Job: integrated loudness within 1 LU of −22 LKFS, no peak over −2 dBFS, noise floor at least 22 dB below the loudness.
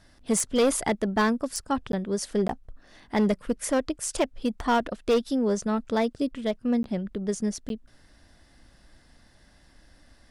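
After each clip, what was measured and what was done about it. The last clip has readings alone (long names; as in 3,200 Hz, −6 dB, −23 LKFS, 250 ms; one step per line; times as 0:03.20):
share of clipped samples 1.0%; peaks flattened at −17.0 dBFS; number of dropouts 4; longest dropout 12 ms; integrated loudness −27.0 LKFS; sample peak −17.0 dBFS; target loudness −22.0 LKFS
→ clipped peaks rebuilt −17 dBFS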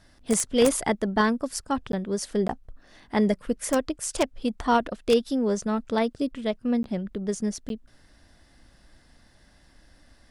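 share of clipped samples 0.0%; number of dropouts 4; longest dropout 12 ms
→ repair the gap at 0:01.92/0:02.48/0:06.83/0:07.69, 12 ms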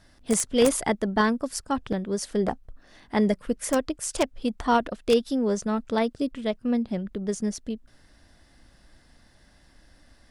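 number of dropouts 0; integrated loudness −26.5 LKFS; sample peak −8.0 dBFS; target loudness −22.0 LKFS
→ level +4.5 dB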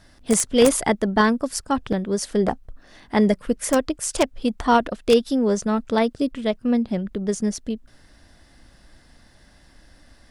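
integrated loudness −22.0 LKFS; sample peak −3.5 dBFS; background noise floor −53 dBFS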